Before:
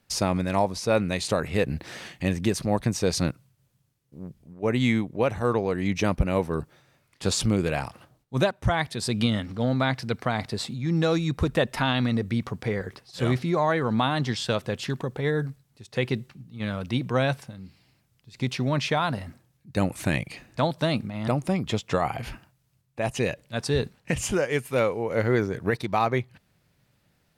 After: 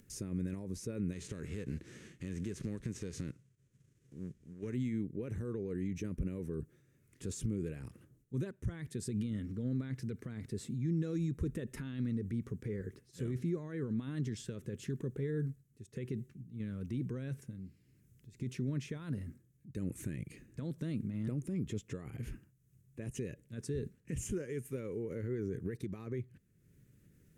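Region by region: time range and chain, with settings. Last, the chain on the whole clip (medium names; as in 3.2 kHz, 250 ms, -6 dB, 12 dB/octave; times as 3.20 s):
1.12–4.74 s: formants flattened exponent 0.6 + low-pass 5.7 kHz + compression 5:1, threshold -28 dBFS
whole clip: peak limiter -22.5 dBFS; FFT filter 420 Hz 0 dB, 740 Hz -26 dB, 1.7 kHz -10 dB, 4.6 kHz -18 dB, 6.6 kHz -5 dB; upward compressor, threshold -49 dBFS; trim -4.5 dB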